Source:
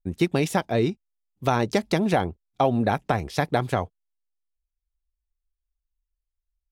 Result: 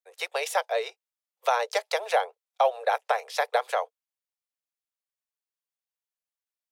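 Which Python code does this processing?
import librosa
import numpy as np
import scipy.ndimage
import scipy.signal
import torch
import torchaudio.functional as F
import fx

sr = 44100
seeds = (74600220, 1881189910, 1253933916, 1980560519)

y = scipy.signal.sosfilt(scipy.signal.butter(16, 460.0, 'highpass', fs=sr, output='sos'), x)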